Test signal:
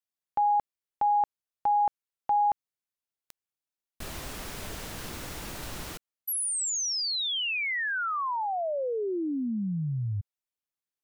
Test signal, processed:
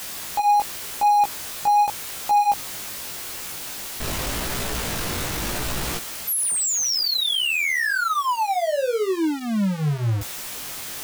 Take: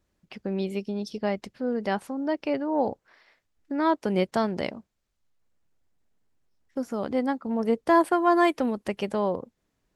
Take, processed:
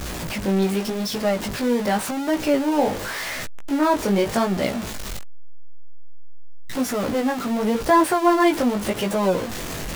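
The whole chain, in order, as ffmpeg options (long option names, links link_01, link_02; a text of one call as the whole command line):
ffmpeg -i in.wav -af "aeval=exprs='val(0)+0.5*0.0501*sgn(val(0))':channel_layout=same,flanger=delay=15.5:depth=5.3:speed=0.87,volume=5.5dB" out.wav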